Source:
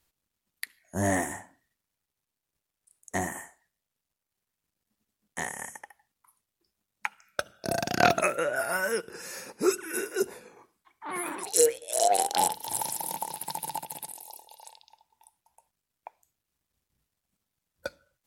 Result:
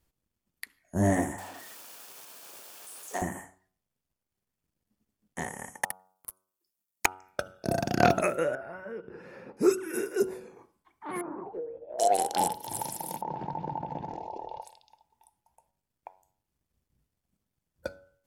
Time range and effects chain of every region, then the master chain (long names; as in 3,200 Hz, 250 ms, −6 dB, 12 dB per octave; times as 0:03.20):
0:01.38–0:03.22: converter with a step at zero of −34 dBFS + high-pass filter 580 Hz + parametric band 2,000 Hz −6.5 dB 0.24 octaves
0:05.81–0:07.06: RIAA equalisation recording + leveller curve on the samples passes 5
0:08.55–0:09.57: high-frequency loss of the air 410 metres + downward compressor 2.5 to 1, threshold −41 dBFS
0:11.21–0:11.99: low-pass filter 1,200 Hz 24 dB per octave + downward compressor 10 to 1, threshold −35 dBFS
0:13.21–0:14.62: low-pass filter 1,200 Hz + bad sample-rate conversion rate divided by 3×, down none, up filtered + envelope flattener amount 70%
whole clip: tilt shelving filter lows +5.5 dB, about 690 Hz; notch filter 3,900 Hz, Q 19; hum removal 93.73 Hz, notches 16